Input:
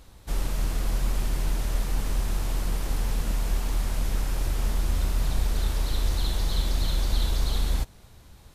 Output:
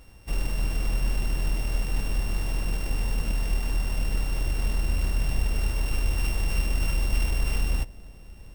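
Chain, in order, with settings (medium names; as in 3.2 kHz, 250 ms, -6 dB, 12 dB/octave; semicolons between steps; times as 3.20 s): sorted samples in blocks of 16 samples; bucket-brigade echo 425 ms, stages 2048, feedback 83%, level -23 dB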